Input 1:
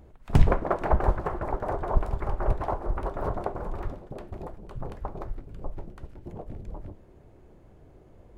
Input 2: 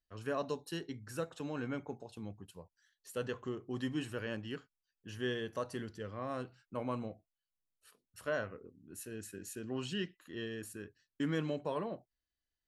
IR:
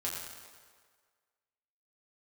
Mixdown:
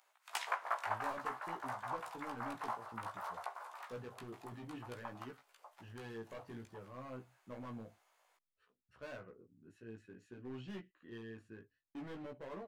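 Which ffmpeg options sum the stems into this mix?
-filter_complex "[0:a]highpass=f=880:w=0.5412,highpass=f=880:w=1.3066,highshelf=f=2700:g=10,volume=0.668[s0];[1:a]lowpass=2300,asoftclip=type=hard:threshold=0.015,adelay=750,volume=0.631[s1];[s0][s1]amix=inputs=2:normalize=0,flanger=delay=15.5:depth=2.3:speed=0.56"

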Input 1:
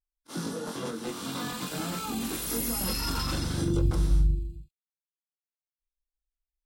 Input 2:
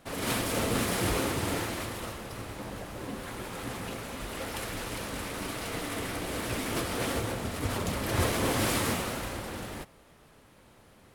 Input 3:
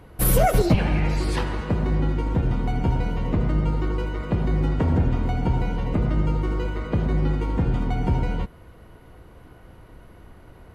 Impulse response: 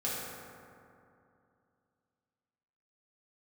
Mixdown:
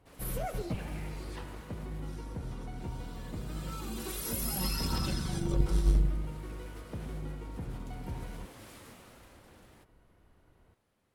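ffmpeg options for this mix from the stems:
-filter_complex "[0:a]aecho=1:1:5.3:0.66,aphaser=in_gain=1:out_gain=1:delay=4.9:decay=0.42:speed=0.31:type=triangular,aeval=exprs='0.316*(cos(1*acos(clip(val(0)/0.316,-1,1)))-cos(1*PI/2))+0.0501*(cos(3*acos(clip(val(0)/0.316,-1,1)))-cos(3*PI/2))':c=same,adelay=1750,volume=0.75,afade=t=in:st=3.45:d=0.75:silence=0.223872[s0];[1:a]acompressor=threshold=0.0158:ratio=1.5,volume=0.112[s1];[2:a]volume=0.133[s2];[s0][s1][s2]amix=inputs=3:normalize=0"

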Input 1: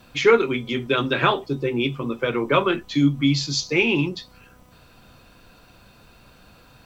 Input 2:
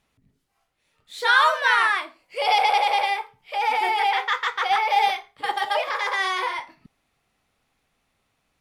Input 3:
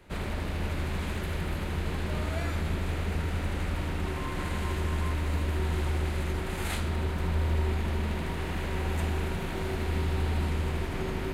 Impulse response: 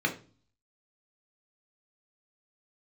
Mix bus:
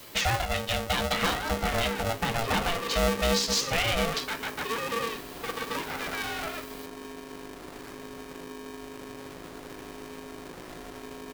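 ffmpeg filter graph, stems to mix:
-filter_complex "[0:a]aemphasis=mode=production:type=75kf,asoftclip=type=tanh:threshold=0.251,volume=1[s0];[1:a]alimiter=limit=0.299:level=0:latency=1:release=277,volume=0.355[s1];[2:a]acompressor=threshold=0.0282:ratio=6,acrusher=samples=11:mix=1:aa=0.000001:lfo=1:lforange=11:lforate=1.1,adelay=1150,volume=0.398[s2];[s0][s1][s2]amix=inputs=3:normalize=0,acrossover=split=160[s3][s4];[s4]acompressor=threshold=0.0398:ratio=2.5[s5];[s3][s5]amix=inputs=2:normalize=0,aeval=exprs='val(0)*sgn(sin(2*PI*340*n/s))':c=same"

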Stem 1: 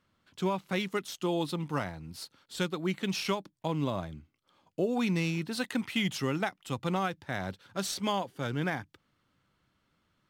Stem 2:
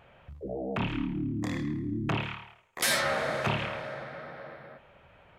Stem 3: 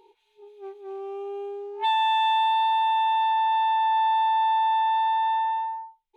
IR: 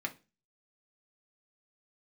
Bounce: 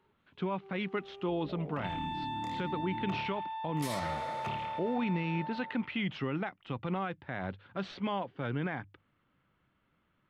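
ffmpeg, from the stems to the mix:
-filter_complex "[0:a]lowpass=f=3000:w=0.5412,lowpass=f=3000:w=1.3066,bandreject=f=50:t=h:w=6,bandreject=f=100:t=h:w=6,volume=1[s0];[1:a]bandreject=f=1600:w=7.5,adelay=1000,volume=0.299[s1];[2:a]volume=0.15[s2];[s0][s1][s2]amix=inputs=3:normalize=0,alimiter=limit=0.0631:level=0:latency=1:release=43"

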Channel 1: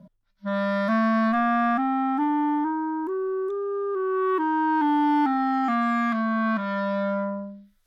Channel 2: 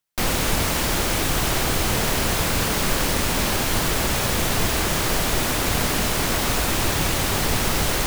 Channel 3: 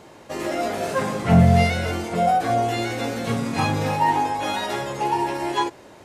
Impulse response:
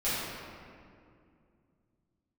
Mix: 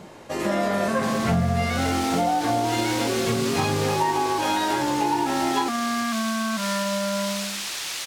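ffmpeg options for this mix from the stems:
-filter_complex "[0:a]volume=1.19[s0];[1:a]bandpass=f=4700:t=q:w=0.77:csg=0,adelay=850,volume=0.794[s1];[2:a]volume=1.19[s2];[s0][s1]amix=inputs=2:normalize=0,alimiter=limit=0.168:level=0:latency=1:release=80,volume=1[s3];[s2][s3]amix=inputs=2:normalize=0,acompressor=threshold=0.112:ratio=6"

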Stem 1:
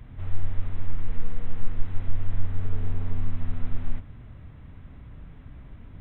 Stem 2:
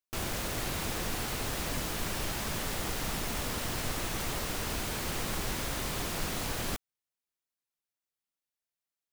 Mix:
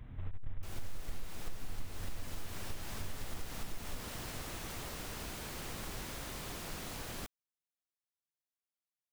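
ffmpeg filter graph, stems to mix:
-filter_complex "[0:a]aeval=exprs='0.376*(cos(1*acos(clip(val(0)/0.376,-1,1)))-cos(1*PI/2))+0.0668*(cos(5*acos(clip(val(0)/0.376,-1,1)))-cos(5*PI/2))+0.0596*(cos(6*acos(clip(val(0)/0.376,-1,1)))-cos(6*PI/2))':c=same,volume=0.299,afade=t=out:st=1.88:d=0.45:silence=0.398107[s0];[1:a]adelay=500,volume=0.355[s1];[s0][s1]amix=inputs=2:normalize=0,acompressor=threshold=0.0178:ratio=3"

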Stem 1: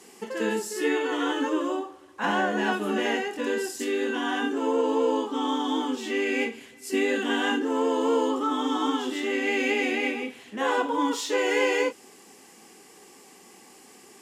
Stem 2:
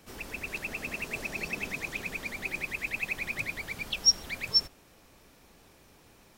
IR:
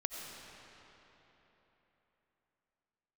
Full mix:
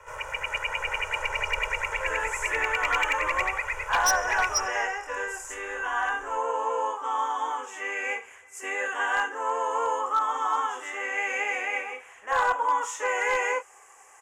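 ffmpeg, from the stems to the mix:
-filter_complex "[0:a]adelay=1700,volume=0.376[s0];[1:a]highshelf=f=6900:g=-12,aeval=exprs='val(0)*sin(2*PI*240*n/s)':c=same,aecho=1:1:2.1:0.87,volume=0.944,asplit=2[s1][s2];[s2]volume=0.251[s3];[2:a]atrim=start_sample=2205[s4];[s3][s4]afir=irnorm=-1:irlink=0[s5];[s0][s1][s5]amix=inputs=3:normalize=0,firequalizer=gain_entry='entry(110,0);entry(200,-23);entry(520,6);entry(1100,15);entry(2400,7);entry(4200,-15);entry(6500,10);entry(13000,-3)':delay=0.05:min_phase=1,asoftclip=type=hard:threshold=0.141,asubboost=boost=4:cutoff=62"

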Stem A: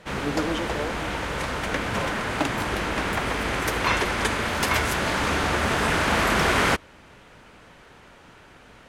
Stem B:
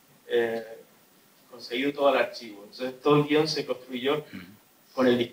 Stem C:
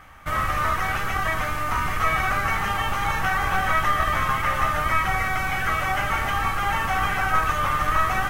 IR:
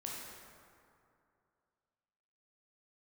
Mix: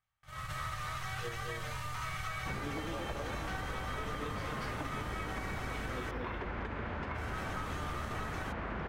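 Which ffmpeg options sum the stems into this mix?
-filter_complex "[0:a]lowshelf=f=150:g=8.5,acompressor=threshold=0.0562:ratio=6,lowpass=1900,adelay=2400,volume=0.596[s0];[1:a]adelay=900,volume=0.398,asplit=2[s1][s2];[s2]volume=0.282[s3];[2:a]equalizer=f=125:t=o:w=1:g=12,equalizer=f=250:t=o:w=1:g=-9,equalizer=f=4000:t=o:w=1:g=10,equalizer=f=8000:t=o:w=1:g=7,volume=0.335,asplit=3[s4][s5][s6];[s4]atrim=end=5.88,asetpts=PTS-STARTPTS,afade=t=out:st=5.876:d=0.004:c=hsin[s7];[s5]atrim=start=5.88:end=7.14,asetpts=PTS-STARTPTS,volume=0[s8];[s6]atrim=start=7.14,asetpts=PTS-STARTPTS,afade=t=in:d=0.004:c=hsin[s9];[s7][s8][s9]concat=n=3:v=0:a=1,asplit=2[s10][s11];[s11]volume=0.473[s12];[s1][s10]amix=inputs=2:normalize=0,agate=range=0.0224:threshold=0.0794:ratio=3:detection=peak,alimiter=level_in=1.33:limit=0.0631:level=0:latency=1:release=474,volume=0.75,volume=1[s13];[s3][s12]amix=inputs=2:normalize=0,aecho=0:1:232:1[s14];[s0][s13][s14]amix=inputs=3:normalize=0,acompressor=threshold=0.0178:ratio=6"

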